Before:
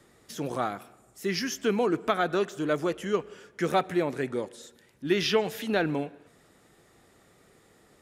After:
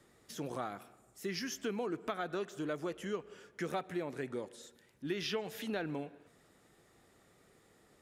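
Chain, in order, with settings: compressor 2.5:1, threshold -30 dBFS, peak gain reduction 8 dB; gain -6 dB

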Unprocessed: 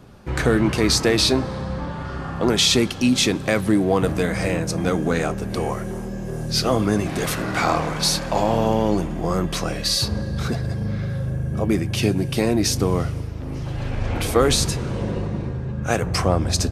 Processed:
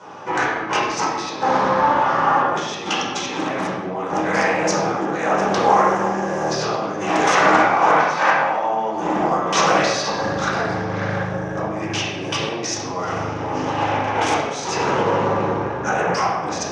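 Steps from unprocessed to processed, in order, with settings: 7.92–8.42 bell 1800 Hz +12.5 dB 2.7 oct; negative-ratio compressor -25 dBFS, ratio -0.5; speaker cabinet 440–6800 Hz, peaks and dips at 840 Hz +9 dB, 1200 Hz +6 dB, 4300 Hz -7 dB, 6000 Hz +9 dB; reverb RT60 1.2 s, pre-delay 10 ms, DRR -7.5 dB; Doppler distortion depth 0.19 ms; gain -1 dB

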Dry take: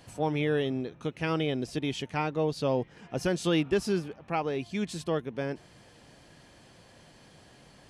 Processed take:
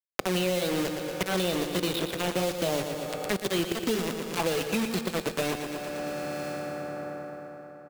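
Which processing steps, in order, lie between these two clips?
gliding pitch shift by +3.5 st ending unshifted; LPF 4400 Hz 24 dB/oct; high shelf 2700 Hz +6 dB; notches 50/100/150 Hz; in parallel at -1 dB: limiter -27 dBFS, peak gain reduction 11.5 dB; on the sum: auto swell 0.139 s; bell 1100 Hz +3.5 dB 2.4 oct; envelope phaser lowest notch 480 Hz, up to 1500 Hz, full sweep at -25 dBFS; bit-crush 5-bit; feedback echo 0.116 s, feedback 51%, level -9 dB; on a send at -13 dB: reverb RT60 4.1 s, pre-delay 3 ms; on the sum: three-band squash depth 100%; gain -1.5 dB

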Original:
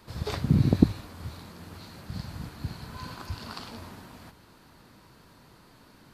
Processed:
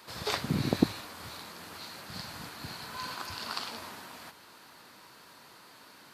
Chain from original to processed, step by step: HPF 880 Hz 6 dB/oct; gain +6 dB

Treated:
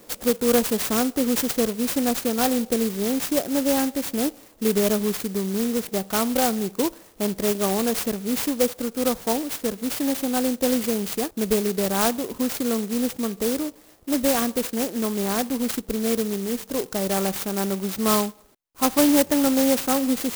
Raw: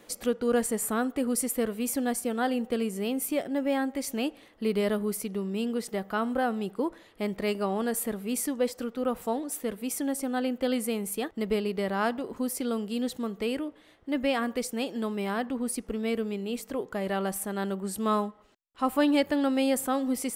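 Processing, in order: clock jitter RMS 0.13 ms; gain +6 dB

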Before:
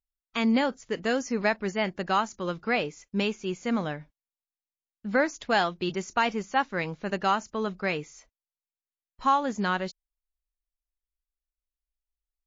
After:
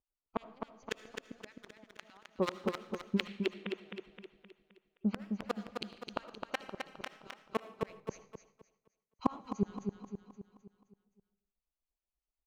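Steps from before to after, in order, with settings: Wiener smoothing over 25 samples; tilt +2.5 dB/oct; vocal rider within 3 dB 0.5 s; harmonic tremolo 8.3 Hz, depth 100%, crossover 1000 Hz; flipped gate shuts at -29 dBFS, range -39 dB; 3.3–3.86 brick-wall FIR band-pass 270–3700 Hz; feedback echo 0.261 s, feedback 48%, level -5 dB; reverb RT60 0.65 s, pre-delay 35 ms, DRR 14 dB; 8–9.41 three-band expander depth 70%; gain +9.5 dB

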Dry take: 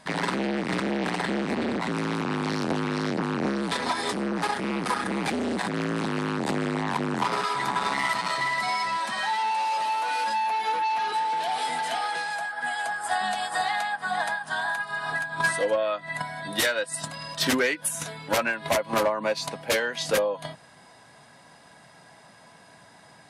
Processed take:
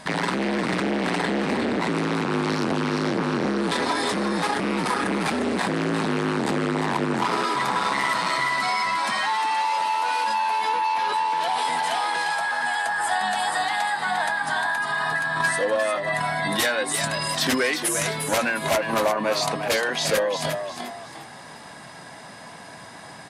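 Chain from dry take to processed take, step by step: in parallel at -1 dB: negative-ratio compressor -35 dBFS; on the sum: frequency-shifting echo 0.353 s, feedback 34%, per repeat +87 Hz, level -7 dB

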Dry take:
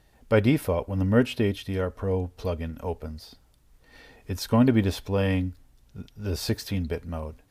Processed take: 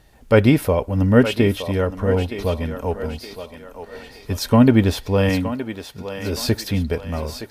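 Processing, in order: 5.29–6.39 HPF 160 Hz 6 dB/oct; thinning echo 0.918 s, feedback 47%, high-pass 390 Hz, level -9 dB; gain +7 dB

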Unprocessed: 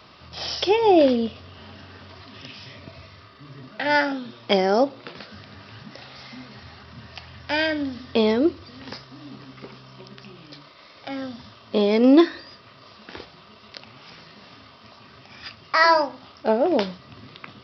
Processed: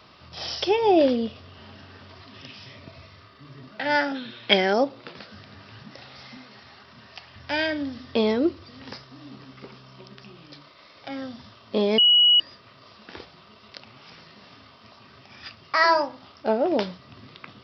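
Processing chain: 4.15–4.73 spectral gain 1400–4300 Hz +9 dB; 6.37–7.36 HPF 300 Hz 6 dB/oct; 11.98–12.4 bleep 2920 Hz -10.5 dBFS; gain -2.5 dB

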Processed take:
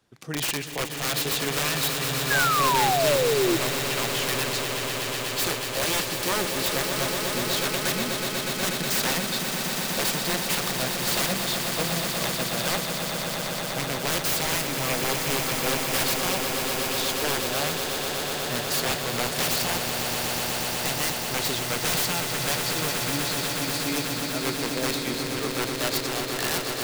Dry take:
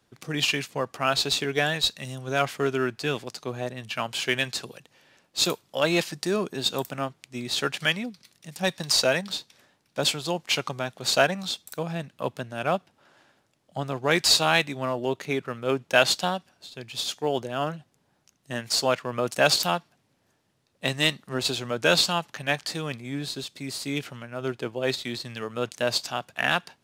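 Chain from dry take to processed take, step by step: wrapped overs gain 19.5 dB; swelling echo 0.122 s, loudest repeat 8, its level -8.5 dB; painted sound fall, 2.3–3.57, 320–1700 Hz -22 dBFS; gain -1 dB

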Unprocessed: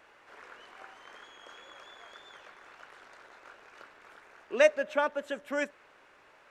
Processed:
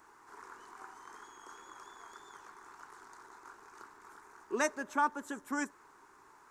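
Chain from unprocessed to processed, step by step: EQ curve 200 Hz 0 dB, 400 Hz +3 dB, 570 Hz -16 dB, 950 Hz +6 dB, 2800 Hz -14 dB, 6900 Hz +7 dB

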